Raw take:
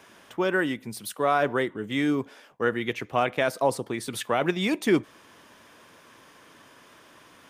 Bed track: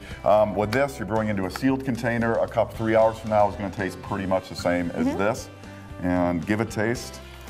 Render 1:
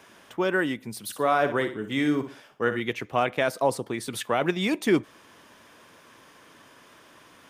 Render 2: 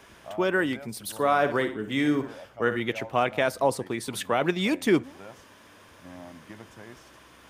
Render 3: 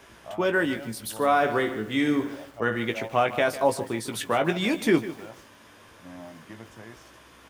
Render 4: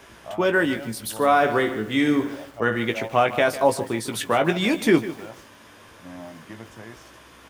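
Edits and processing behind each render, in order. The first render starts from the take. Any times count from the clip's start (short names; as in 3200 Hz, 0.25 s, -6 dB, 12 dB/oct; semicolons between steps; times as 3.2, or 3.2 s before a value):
1.03–2.8 flutter echo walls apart 10.3 m, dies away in 0.36 s
add bed track -22 dB
doubler 18 ms -7 dB; lo-fi delay 0.151 s, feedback 35%, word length 7-bit, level -14 dB
gain +3.5 dB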